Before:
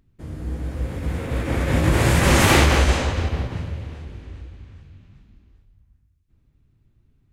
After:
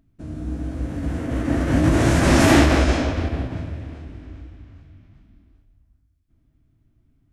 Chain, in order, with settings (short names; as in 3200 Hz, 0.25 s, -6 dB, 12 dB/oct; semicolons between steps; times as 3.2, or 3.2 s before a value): small resonant body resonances 290/650 Hz, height 12 dB, ringing for 45 ms; formant shift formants -3 st; gain -2 dB